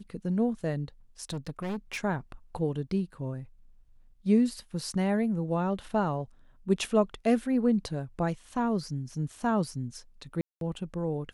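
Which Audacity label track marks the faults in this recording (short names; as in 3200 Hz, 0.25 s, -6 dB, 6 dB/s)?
1.290000	1.990000	clipped -30 dBFS
10.410000	10.610000	gap 0.202 s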